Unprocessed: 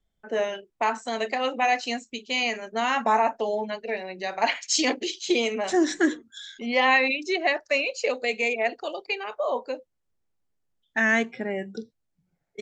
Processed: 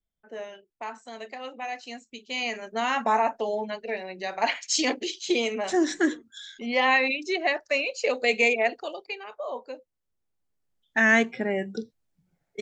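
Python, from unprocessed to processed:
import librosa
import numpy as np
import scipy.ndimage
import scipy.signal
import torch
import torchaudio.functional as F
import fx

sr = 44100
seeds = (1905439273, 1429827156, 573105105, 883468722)

y = fx.gain(x, sr, db=fx.line((1.8, -11.5), (2.64, -1.5), (7.96, -1.5), (8.39, 5.0), (9.18, -7.0), (9.68, -7.0), (11.13, 2.5)))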